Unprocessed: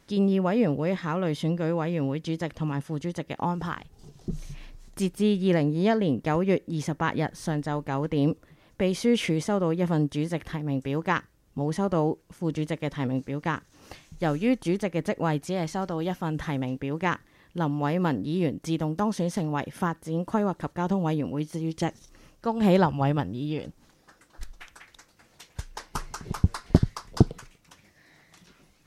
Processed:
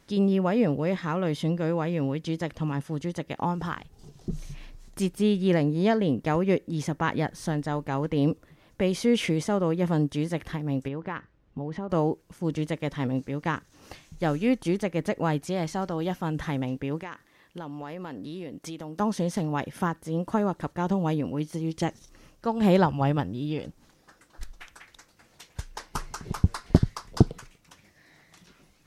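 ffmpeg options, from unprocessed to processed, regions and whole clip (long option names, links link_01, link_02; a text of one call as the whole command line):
ffmpeg -i in.wav -filter_complex "[0:a]asettb=1/sr,asplit=3[link_01][link_02][link_03];[link_01]atrim=end=10.884[link_04];[link_02]atrim=start=10.88:end=11.9,asetpts=PTS-STARTPTS,afade=type=in:duration=0.004:curve=qsin,afade=type=out:start_time=1.016:duration=0.004:curve=qsin,lowpass=2800,acompressor=threshold=-29dB:ratio=4:attack=3.2:release=140:knee=1:detection=peak[link_05];[link_03]atrim=start=11.896[link_06];[link_04][link_05]acrossfade=duration=0.004:curve1=hsin:curve2=qsin[link_07];[link_07][link_06]acrossfade=duration=0.004:curve1=qsin:curve2=hsin,asettb=1/sr,asplit=3[link_08][link_09][link_10];[link_08]atrim=end=17.004[link_11];[link_09]atrim=start=17:end=19,asetpts=PTS-STARTPTS,afade=type=in:duration=0.004:curve=qsin,afade=type=out:start_time=1.996:duration=0.004:curve=qsin,lowshelf=frequency=190:gain=-12,acompressor=threshold=-33dB:ratio=8:attack=3.2:release=140:knee=1:detection=peak[link_12];[link_10]atrim=start=18.996[link_13];[link_11][link_12]acrossfade=duration=0.004:curve1=hsin:curve2=qsin[link_14];[link_14][link_13]acrossfade=duration=0.004:curve1=qsin:curve2=hsin" out.wav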